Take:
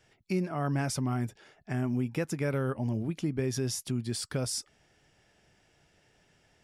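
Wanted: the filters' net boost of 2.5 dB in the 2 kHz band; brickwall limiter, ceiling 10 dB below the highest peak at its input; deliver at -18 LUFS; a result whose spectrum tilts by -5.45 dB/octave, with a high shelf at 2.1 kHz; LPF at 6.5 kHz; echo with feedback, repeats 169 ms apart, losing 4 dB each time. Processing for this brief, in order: low-pass 6.5 kHz; peaking EQ 2 kHz +5.5 dB; treble shelf 2.1 kHz -4 dB; peak limiter -29.5 dBFS; feedback delay 169 ms, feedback 63%, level -4 dB; trim +18.5 dB

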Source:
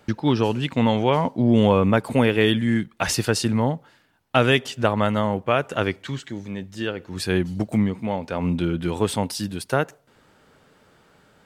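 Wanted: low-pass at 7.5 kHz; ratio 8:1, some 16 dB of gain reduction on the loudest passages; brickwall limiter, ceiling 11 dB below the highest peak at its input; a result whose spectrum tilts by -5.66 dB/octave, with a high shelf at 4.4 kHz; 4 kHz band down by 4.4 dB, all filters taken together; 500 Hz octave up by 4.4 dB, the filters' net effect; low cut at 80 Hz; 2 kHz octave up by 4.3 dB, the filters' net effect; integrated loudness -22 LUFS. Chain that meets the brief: high-pass 80 Hz; low-pass 7.5 kHz; peaking EQ 500 Hz +5 dB; peaking EQ 2 kHz +8.5 dB; peaking EQ 4 kHz -5.5 dB; treble shelf 4.4 kHz -8.5 dB; compression 8:1, threshold -27 dBFS; trim +12 dB; peak limiter -9.5 dBFS

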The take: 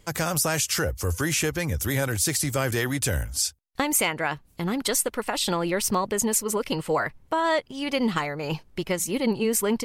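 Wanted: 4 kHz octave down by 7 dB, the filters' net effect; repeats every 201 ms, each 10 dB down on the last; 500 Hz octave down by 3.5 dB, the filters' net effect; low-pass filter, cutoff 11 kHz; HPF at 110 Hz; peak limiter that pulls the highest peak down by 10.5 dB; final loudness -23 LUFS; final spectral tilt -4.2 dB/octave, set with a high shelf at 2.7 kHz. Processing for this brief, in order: high-pass 110 Hz; low-pass 11 kHz; peaking EQ 500 Hz -4 dB; treble shelf 2.7 kHz -7 dB; peaking EQ 4 kHz -3 dB; peak limiter -23.5 dBFS; feedback delay 201 ms, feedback 32%, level -10 dB; trim +9.5 dB

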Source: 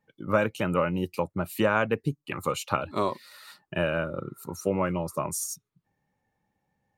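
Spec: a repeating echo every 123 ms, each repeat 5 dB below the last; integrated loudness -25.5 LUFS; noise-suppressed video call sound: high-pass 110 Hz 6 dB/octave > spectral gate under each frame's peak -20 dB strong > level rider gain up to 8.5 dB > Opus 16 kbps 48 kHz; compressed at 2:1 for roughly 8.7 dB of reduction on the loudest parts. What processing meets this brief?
compression 2:1, threshold -34 dBFS; high-pass 110 Hz 6 dB/octave; feedback delay 123 ms, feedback 56%, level -5 dB; spectral gate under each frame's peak -20 dB strong; level rider gain up to 8.5 dB; trim +9.5 dB; Opus 16 kbps 48 kHz

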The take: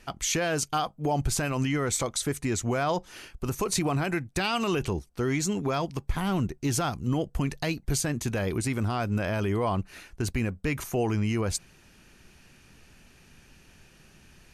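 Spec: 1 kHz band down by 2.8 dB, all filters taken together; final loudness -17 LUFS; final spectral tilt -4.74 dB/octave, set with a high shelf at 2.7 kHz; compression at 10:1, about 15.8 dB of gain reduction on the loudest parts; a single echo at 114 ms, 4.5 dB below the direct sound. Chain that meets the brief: peaking EQ 1 kHz -3.5 dB; treble shelf 2.7 kHz -3 dB; compression 10:1, threshold -40 dBFS; delay 114 ms -4.5 dB; trim +26 dB

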